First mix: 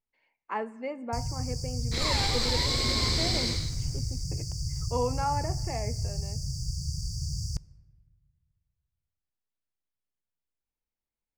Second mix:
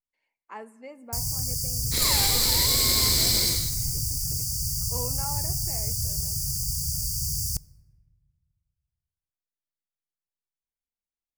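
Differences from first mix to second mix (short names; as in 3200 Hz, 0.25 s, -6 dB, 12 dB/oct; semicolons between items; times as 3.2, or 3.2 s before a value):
speech -8.5 dB; master: remove air absorption 140 m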